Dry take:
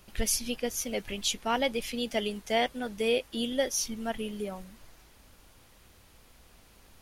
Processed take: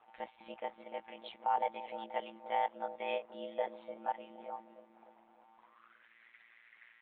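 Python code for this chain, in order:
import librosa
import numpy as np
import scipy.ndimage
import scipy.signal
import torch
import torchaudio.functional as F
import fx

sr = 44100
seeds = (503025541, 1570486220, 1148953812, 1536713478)

p1 = fx.lpc_monotone(x, sr, seeds[0], pitch_hz=280.0, order=16)
p2 = fx.peak_eq(p1, sr, hz=2100.0, db=4.5, octaves=0.21)
p3 = fx.echo_feedback(p2, sr, ms=479, feedback_pct=33, wet_db=-22.0)
p4 = fx.filter_sweep_bandpass(p3, sr, from_hz=820.0, to_hz=1900.0, start_s=5.52, end_s=6.14, q=5.8)
p5 = fx.low_shelf(p4, sr, hz=430.0, db=-8.5)
p6 = fx.echo_bbd(p5, sr, ms=296, stages=1024, feedback_pct=59, wet_db=-8)
p7 = p6 * np.sin(2.0 * np.pi * 58.0 * np.arange(len(p6)) / sr)
p8 = fx.over_compress(p7, sr, threshold_db=-43.0, ratio=-0.5)
p9 = p7 + F.gain(torch.from_numpy(p8), -2.0).numpy()
y = F.gain(torch.from_numpy(p9), 6.0).numpy()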